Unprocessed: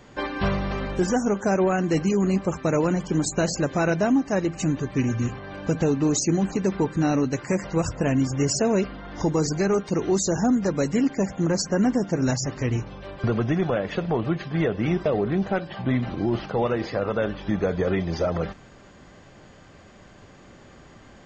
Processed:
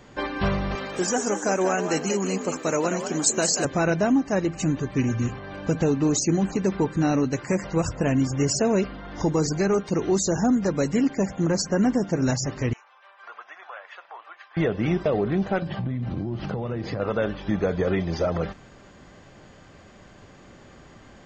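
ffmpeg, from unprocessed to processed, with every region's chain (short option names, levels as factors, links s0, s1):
-filter_complex "[0:a]asettb=1/sr,asplit=3[s0][s1][s2];[s0]atrim=end=0.754[s3];[s1]atrim=start=0.75:end=3.65,asetpts=PTS-STARTPTS,afade=t=in:d=0.004:c=qsin,afade=t=out:st=2.896:d=0.004:c=qsin,highpass=f=81:p=1,aemphasis=mode=production:type=bsi,asplit=5[s4][s5][s6][s7][s8];[s5]adelay=186,afreqshift=62,volume=0.422[s9];[s6]adelay=372,afreqshift=124,volume=0.14[s10];[s7]adelay=558,afreqshift=186,volume=0.0457[s11];[s8]adelay=744,afreqshift=248,volume=0.0151[s12];[s4][s9][s10][s11][s12]amix=inputs=5:normalize=0,atrim=end_sample=127890[s13];[s2]atrim=start=3.646[s14];[s3][s13]acrossfade=d=0.004:c1=hsin:c2=qsin[s15];[s15][s14]acrossfade=d=0.004:c1=qsin:c2=hsin,asettb=1/sr,asplit=3[s16][s17][s18];[s16]atrim=end=12.734[s19];[s17]atrim=start=12.73:end=14.57,asetpts=PTS-STARTPTS,afade=t=in:d=0.004:c=qsin,afade=t=out:st=1.836:d=0.004:c=qsin,highpass=f=1000:w=0.5412,highpass=f=1000:w=1.3066,equalizer=f=5600:w=0.36:g=-14.5,bandreject=f=4300:w=30[s20];[s18]atrim=start=14.566[s21];[s19][s20]acrossfade=d=0.004:c1=hsin:c2=qsin[s22];[s22][s21]acrossfade=d=0.004:c1=qsin:c2=hsin,asettb=1/sr,asplit=3[s23][s24][s25];[s23]atrim=end=15.624[s26];[s24]atrim=start=15.62:end=17,asetpts=PTS-STARTPTS,afade=t=in:d=0.004:c=qsin,afade=t=out:st=1.376:d=0.004:c=qsin,equalizer=f=120:w=0.53:g=12,acompressor=threshold=0.0631:ratio=16:attack=3.2:release=140:knee=1:detection=peak[s27];[s25]atrim=start=16.996[s28];[s26][s27]acrossfade=d=0.004:c1=hsin:c2=qsin[s29];[s29][s28]acrossfade=d=0.004:c1=qsin:c2=hsin"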